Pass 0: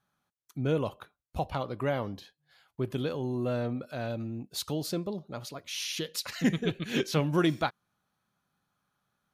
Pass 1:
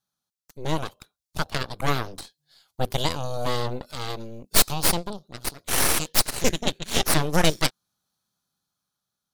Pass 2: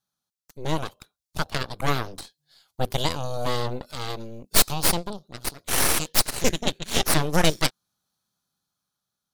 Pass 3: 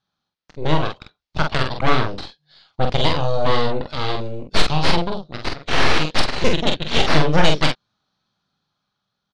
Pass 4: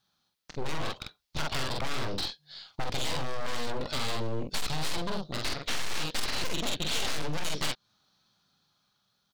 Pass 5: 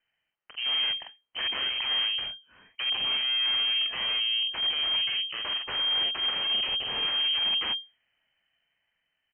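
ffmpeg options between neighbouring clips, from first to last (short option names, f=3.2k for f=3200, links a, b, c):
-af "highshelf=f=3.2k:t=q:w=1.5:g=10.5,aeval=exprs='0.422*(cos(1*acos(clip(val(0)/0.422,-1,1)))-cos(1*PI/2))+0.0944*(cos(3*acos(clip(val(0)/0.422,-1,1)))-cos(3*PI/2))+0.119*(cos(8*acos(clip(val(0)/0.422,-1,1)))-cos(8*PI/2))':c=same,dynaudnorm=f=300:g=9:m=8dB"
-af anull
-af "lowpass=f=4.4k:w=0.5412,lowpass=f=4.4k:w=1.3066,asoftclip=type=tanh:threshold=-13.5dB,aecho=1:1:26|46:0.188|0.596,volume=8dB"
-af "highshelf=f=4.1k:g=11,acompressor=threshold=-21dB:ratio=2.5,asoftclip=type=hard:threshold=-25dB"
-af "lowpass=f=2.7k:t=q:w=0.5098,lowpass=f=2.7k:t=q:w=0.6013,lowpass=f=2.7k:t=q:w=0.9,lowpass=f=2.7k:t=q:w=2.563,afreqshift=-3200"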